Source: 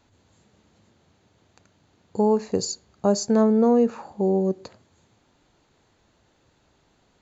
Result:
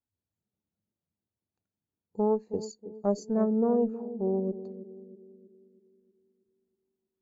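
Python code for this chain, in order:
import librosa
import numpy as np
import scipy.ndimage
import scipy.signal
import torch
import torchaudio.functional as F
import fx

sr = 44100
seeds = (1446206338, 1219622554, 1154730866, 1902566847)

y = fx.cheby_harmonics(x, sr, harmonics=(2,), levels_db=(-11,), full_scale_db=-8.5)
y = fx.echo_banded(y, sr, ms=319, feedback_pct=67, hz=300.0, wet_db=-8.0)
y = fx.spectral_expand(y, sr, expansion=1.5)
y = y * 10.0 ** (-8.5 / 20.0)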